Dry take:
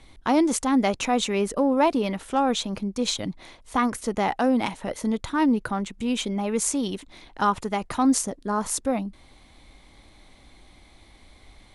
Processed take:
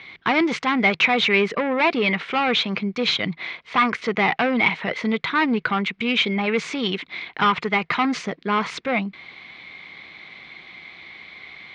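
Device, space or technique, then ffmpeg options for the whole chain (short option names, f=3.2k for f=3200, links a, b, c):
overdrive pedal into a guitar cabinet: -filter_complex "[0:a]asplit=2[a][b];[b]highpass=f=720:p=1,volume=19dB,asoftclip=type=tanh:threshold=-8dB[c];[a][c]amix=inputs=2:normalize=0,lowpass=f=5.9k:p=1,volume=-6dB,highpass=110,equalizer=f=160:t=q:w=4:g=8,equalizer=f=280:t=q:w=4:g=-7,equalizer=f=580:t=q:w=4:g=-8,equalizer=f=860:t=q:w=4:g=-7,equalizer=f=2.2k:t=q:w=4:g=9,lowpass=f=4k:w=0.5412,lowpass=f=4k:w=1.3066"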